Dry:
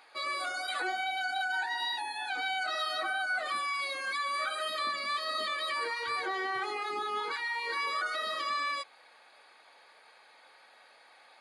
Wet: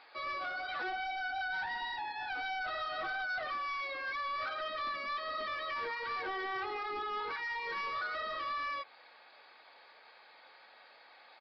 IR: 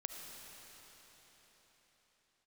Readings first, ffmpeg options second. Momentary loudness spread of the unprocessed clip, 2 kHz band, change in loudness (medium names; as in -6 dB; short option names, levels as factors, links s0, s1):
2 LU, -4.0 dB, -4.5 dB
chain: -filter_complex "[0:a]acrossover=split=2900[s0][s1];[s1]acompressor=threshold=0.00178:ratio=4:attack=1:release=60[s2];[s0][s2]amix=inputs=2:normalize=0,aresample=11025,asoftclip=type=tanh:threshold=0.0224,aresample=44100"